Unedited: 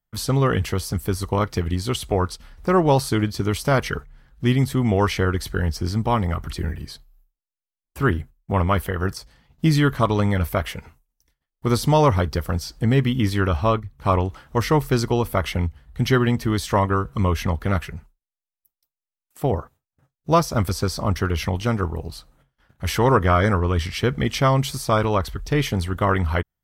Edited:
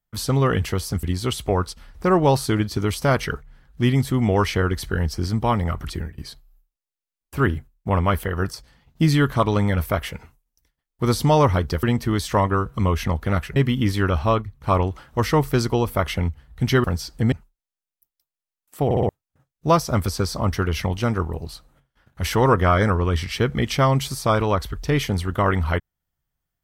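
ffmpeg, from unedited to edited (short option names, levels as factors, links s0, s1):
-filter_complex "[0:a]asplit=11[s0][s1][s2][s3][s4][s5][s6][s7][s8][s9][s10];[s0]atrim=end=1.032[s11];[s1]atrim=start=1.658:end=6.81,asetpts=PTS-STARTPTS,afade=t=out:st=4.902:d=0.25:silence=0.105925[s12];[s2]atrim=start=6.81:end=12.462,asetpts=PTS-STARTPTS,afade=t=in:d=0.004:c=hsin:silence=0.105925[s13];[s3]atrim=start=16.218:end=17.952[s14];[s4]atrim=start=12.938:end=16.222[s15];[s5]atrim=start=12.458:end=12.942[s16];[s6]atrim=start=17.948:end=19.542[s17];[s7]atrim=start=19.478:end=19.542[s18];[s8]atrim=start=19.478:end=19.542[s19];[s9]atrim=start=19.478:end=19.542[s20];[s10]atrim=start=19.718[s21];[s12][s13]concat=n=2:v=0:a=1[s22];[s11][s22]acrossfade=d=0.004:c1=hsin:c2=hsin[s23];[s23][s14]acrossfade=d=0.004:c1=hsin:c2=hsin[s24];[s24][s15]acrossfade=d=0.004:c1=hsin:c2=hsin[s25];[s25][s16]acrossfade=d=0.004:c1=hsin:c2=hsin[s26];[s26][s17]acrossfade=d=0.004:c1=hsin:c2=hsin[s27];[s27][s18]acrossfade=d=0.004:c1=hsin:c2=hsin[s28];[s28][s19]acrossfade=d=0.004:c1=hsin:c2=hsin[s29];[s29][s20]acrossfade=d=0.004:c1=hsin:c2=hsin[s30];[s30][s21]acrossfade=d=0.004:c1=hsin:c2=hsin"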